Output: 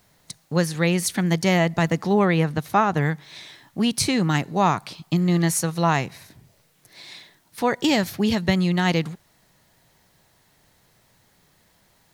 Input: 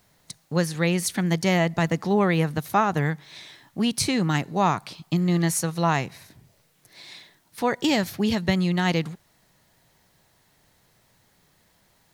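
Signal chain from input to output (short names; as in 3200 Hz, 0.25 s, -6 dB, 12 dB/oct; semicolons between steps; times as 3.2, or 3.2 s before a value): 2.25–3.01 high shelf 8600 Hz -9 dB; gain +2 dB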